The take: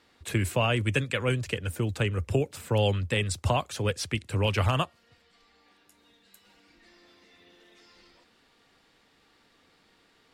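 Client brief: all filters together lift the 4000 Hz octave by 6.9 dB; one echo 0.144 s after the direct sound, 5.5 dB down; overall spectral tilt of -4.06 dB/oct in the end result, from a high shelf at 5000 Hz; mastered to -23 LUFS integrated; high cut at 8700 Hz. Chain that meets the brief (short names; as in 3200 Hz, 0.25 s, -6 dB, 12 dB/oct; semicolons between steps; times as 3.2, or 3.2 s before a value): LPF 8700 Hz; bell 4000 Hz +7 dB; high shelf 5000 Hz +8 dB; echo 0.144 s -5.5 dB; gain +2 dB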